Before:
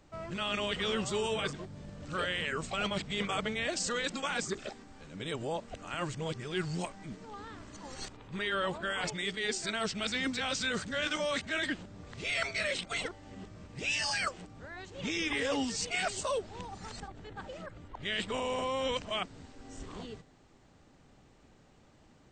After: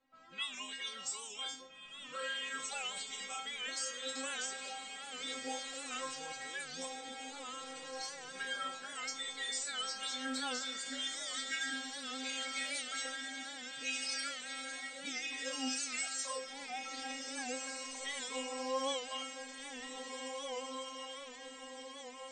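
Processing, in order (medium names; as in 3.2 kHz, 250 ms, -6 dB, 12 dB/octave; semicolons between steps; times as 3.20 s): RIAA curve recording; level-controlled noise filter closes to 2.2 kHz, open at -27 dBFS; spectral noise reduction 8 dB; compression, threshold -36 dBFS, peak gain reduction 14 dB; inharmonic resonator 260 Hz, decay 0.46 s, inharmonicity 0.002; echo that smears into a reverb 1783 ms, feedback 54%, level -4 dB; on a send at -14 dB: reverberation RT60 1.6 s, pre-delay 7 ms; on the sum: warped record 78 rpm, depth 100 cents; trim +13.5 dB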